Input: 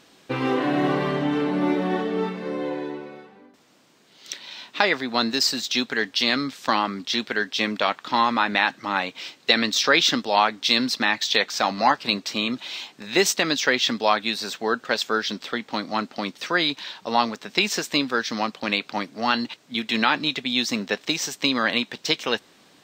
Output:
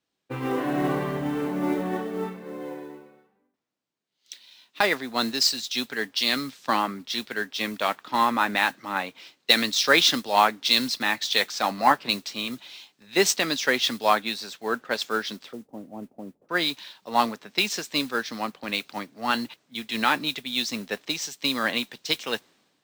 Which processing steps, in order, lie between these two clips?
0:15.53–0:16.49: inverse Chebyshev low-pass filter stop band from 3,000 Hz, stop band 70 dB
noise that follows the level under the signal 18 dB
multiband upward and downward expander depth 70%
level −3.5 dB

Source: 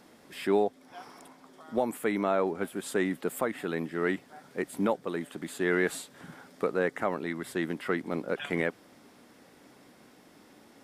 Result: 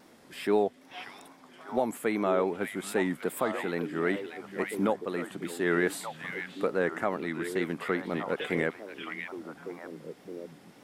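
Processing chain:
echo through a band-pass that steps 589 ms, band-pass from 2,600 Hz, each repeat −1.4 octaves, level −2.5 dB
tape wow and flutter 75 cents

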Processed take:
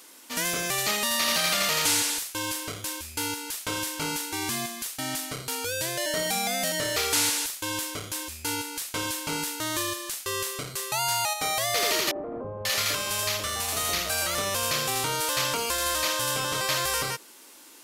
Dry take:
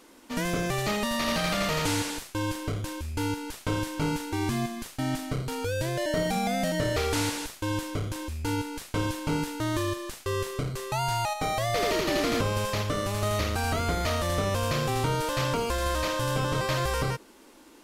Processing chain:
spectral tilt +3.5 dB per octave
0:12.11–0:14.35: three-band delay without the direct sound mids, lows, highs 40/540 ms, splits 260/810 Hz

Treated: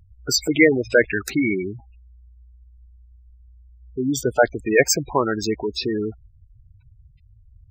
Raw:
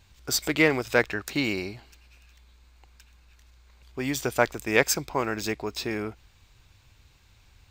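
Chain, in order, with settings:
gate on every frequency bin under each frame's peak −10 dB strong
0:04.23–0:04.66: low-pass that shuts in the quiet parts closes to 1,600 Hz, open at −17.5 dBFS
level +8 dB

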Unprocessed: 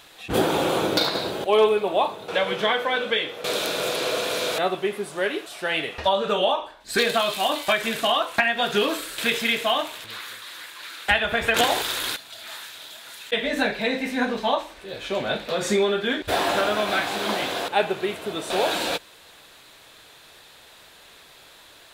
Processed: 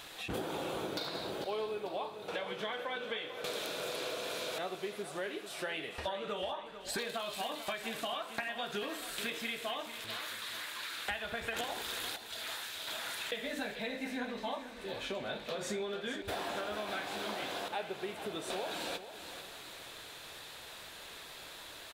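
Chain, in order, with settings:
downward compressor 4 to 1, threshold −39 dBFS, peak gain reduction 21 dB
repeating echo 445 ms, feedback 43%, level −11.5 dB
0:12.87–0:13.59: multiband upward and downward compressor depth 70%

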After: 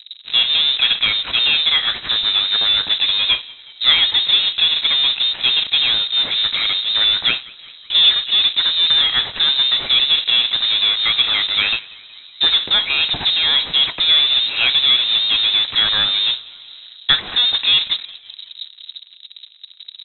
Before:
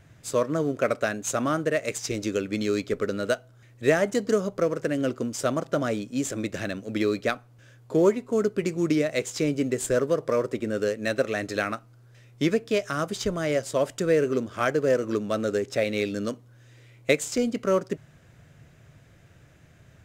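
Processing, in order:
low-pass that shuts in the quiet parts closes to 630 Hz, open at −18.5 dBFS
in parallel at −11.5 dB: fuzz pedal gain 45 dB, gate −51 dBFS
on the sum: echo with shifted repeats 186 ms, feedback 59%, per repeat +67 Hz, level −23 dB
voice inversion scrambler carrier 3,900 Hz
level +4 dB

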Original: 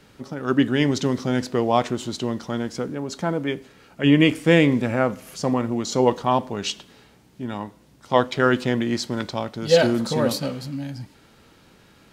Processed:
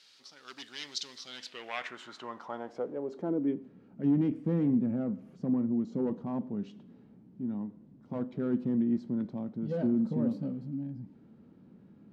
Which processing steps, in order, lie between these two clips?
mu-law and A-law mismatch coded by mu
hard clipping −14 dBFS, distortion −11 dB
band-pass filter sweep 4,500 Hz → 210 Hz, 0:01.18–0:03.70
level −2 dB

